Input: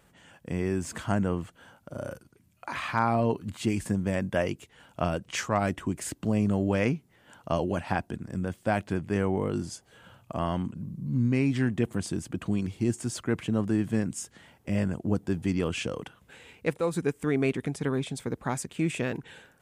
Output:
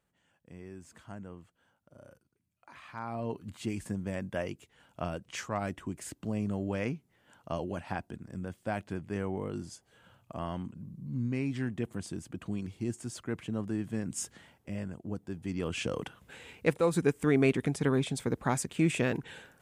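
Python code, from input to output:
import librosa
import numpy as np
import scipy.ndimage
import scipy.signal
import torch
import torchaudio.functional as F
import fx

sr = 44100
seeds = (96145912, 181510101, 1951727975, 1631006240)

y = fx.gain(x, sr, db=fx.line((2.83, -18.0), (3.39, -7.5), (14.02, -7.5), (14.23, 2.0), (14.77, -10.5), (15.38, -10.5), (15.99, 1.0)))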